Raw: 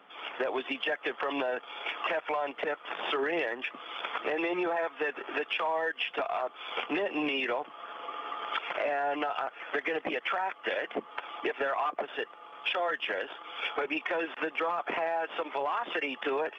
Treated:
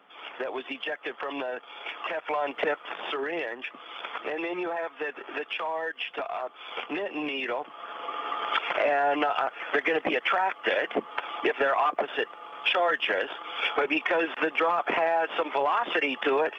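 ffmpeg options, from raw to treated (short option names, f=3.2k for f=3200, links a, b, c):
-af "volume=13dB,afade=t=in:st=2.13:d=0.51:silence=0.421697,afade=t=out:st=2.64:d=0.35:silence=0.446684,afade=t=in:st=7.35:d=1:silence=0.446684"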